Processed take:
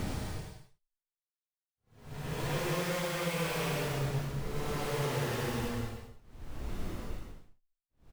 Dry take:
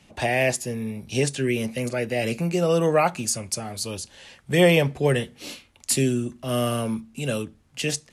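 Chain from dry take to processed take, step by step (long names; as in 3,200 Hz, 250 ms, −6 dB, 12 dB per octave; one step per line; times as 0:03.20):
far-end echo of a speakerphone 300 ms, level −15 dB
comparator with hysteresis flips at −26 dBFS
extreme stretch with random phases 4.6×, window 0.25 s, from 0:03.99
level −8 dB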